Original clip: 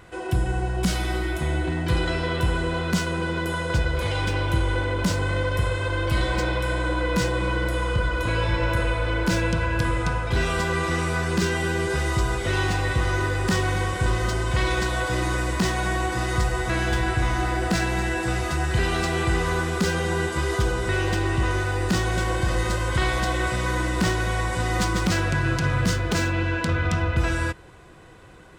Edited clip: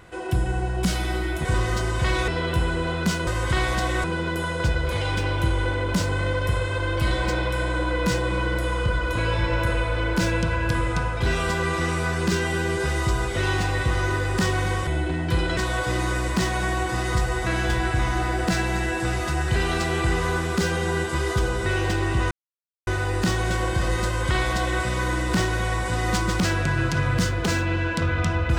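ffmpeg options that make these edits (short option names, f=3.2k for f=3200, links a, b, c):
-filter_complex "[0:a]asplit=8[a][b][c][d][e][f][g][h];[a]atrim=end=1.452[i];[b]atrim=start=13.968:end=14.802[j];[c]atrim=start=2.148:end=3.142[k];[d]atrim=start=22.718:end=23.492[l];[e]atrim=start=3.138:end=13.972[m];[f]atrim=start=1.448:end=2.152[n];[g]atrim=start=14.798:end=21.54,asetpts=PTS-STARTPTS,afade=t=out:st=6.738:d=0.004:c=hsin,apad=pad_dur=0.56[o];[h]atrim=start=21.54,asetpts=PTS-STARTPTS,afade=t=in:d=0.004:c=hsin[p];[i][j]acrossfade=d=0.004:c1=hsin:c2=hsin[q];[q][k]acrossfade=d=0.004:c1=hsin:c2=hsin[r];[r][l]acrossfade=d=0.004:c1=hsin:c2=hsin[s];[s][m]acrossfade=d=0.004:c1=hsin:c2=hsin[t];[t][n]acrossfade=d=0.004:c1=hsin:c2=hsin[u];[o][p]concat=n=2:v=0:a=1[v];[u][v]acrossfade=d=0.004:c1=hsin:c2=hsin"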